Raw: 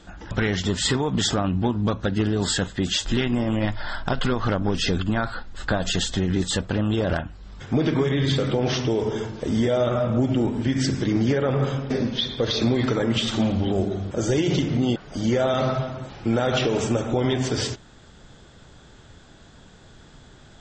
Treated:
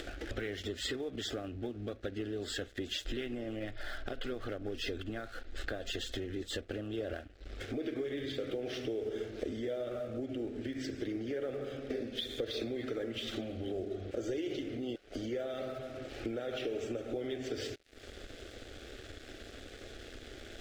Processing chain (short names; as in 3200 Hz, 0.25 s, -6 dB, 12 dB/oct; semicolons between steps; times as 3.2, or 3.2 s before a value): upward compressor, threshold -31 dBFS; tone controls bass -5 dB, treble -13 dB; crossover distortion -46.5 dBFS; compressor 8:1, threshold -37 dBFS, peak gain reduction 18 dB; fixed phaser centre 400 Hz, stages 4; gain +4.5 dB